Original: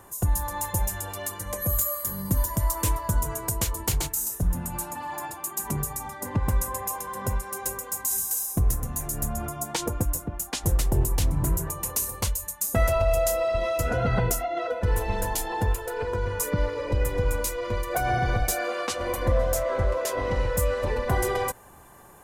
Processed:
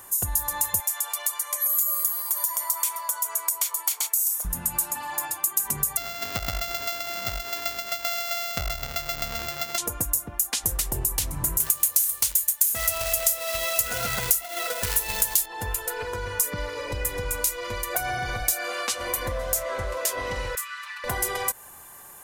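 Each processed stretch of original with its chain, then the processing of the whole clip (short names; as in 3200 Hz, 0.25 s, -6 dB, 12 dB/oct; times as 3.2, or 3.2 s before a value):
0.8–4.45 HPF 540 Hz 24 dB/oct + comb 0.9 ms, depth 33% + compressor 1.5:1, threshold -35 dBFS
5.97–9.78 sample sorter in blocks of 64 samples + upward compressor, threshold -31 dBFS + bell 10000 Hz -14.5 dB 0.58 oct
11.6–15.46 high shelf 2400 Hz +11.5 dB + companded quantiser 4-bit
20.55–21.04 elliptic high-pass 1200 Hz, stop band 70 dB + high shelf 4600 Hz -12 dB
whole clip: tilt shelf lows -6.5 dB, about 920 Hz; compressor, threshold -25 dBFS; high shelf 8300 Hz +8 dB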